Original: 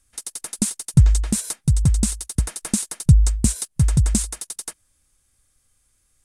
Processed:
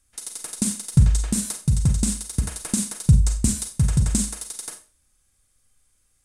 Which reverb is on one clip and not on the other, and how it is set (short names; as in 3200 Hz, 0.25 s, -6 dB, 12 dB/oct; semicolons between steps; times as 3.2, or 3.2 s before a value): Schroeder reverb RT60 0.34 s, combs from 30 ms, DRR 4.5 dB; gain -2.5 dB